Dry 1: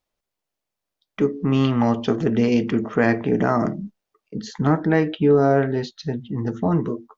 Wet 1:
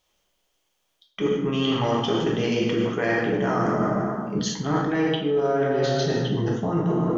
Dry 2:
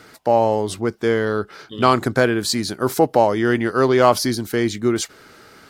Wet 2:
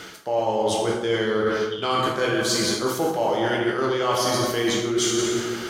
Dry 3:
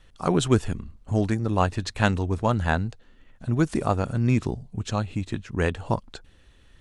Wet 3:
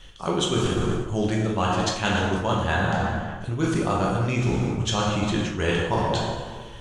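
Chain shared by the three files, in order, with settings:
thirty-one-band graphic EQ 100 Hz −7 dB, 250 Hz −7 dB, 3,150 Hz +11 dB, 6,300 Hz +7 dB
dense smooth reverb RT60 1.6 s, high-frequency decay 0.6×, DRR −3 dB
reversed playback
downward compressor 12 to 1, threshold −26 dBFS
reversed playback
level +6.5 dB

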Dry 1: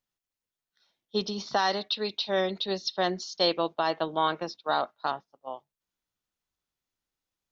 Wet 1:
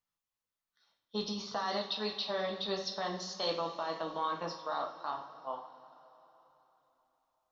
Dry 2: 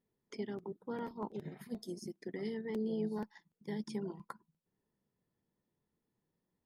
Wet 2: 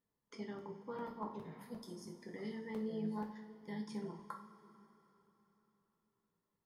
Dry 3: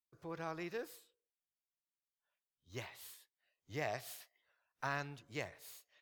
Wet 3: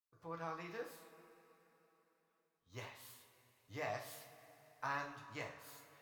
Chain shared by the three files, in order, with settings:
parametric band 1,100 Hz +7.5 dB 0.68 octaves
notch filter 370 Hz, Q 12
brickwall limiter −20 dBFS
coupled-rooms reverb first 0.4 s, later 3.7 s, from −18 dB, DRR 0.5 dB
level −6.5 dB

